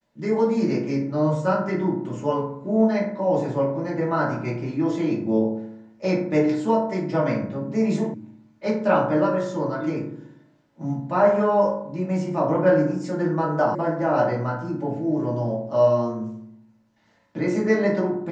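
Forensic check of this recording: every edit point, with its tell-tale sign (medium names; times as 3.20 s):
8.14 s: sound stops dead
13.75 s: sound stops dead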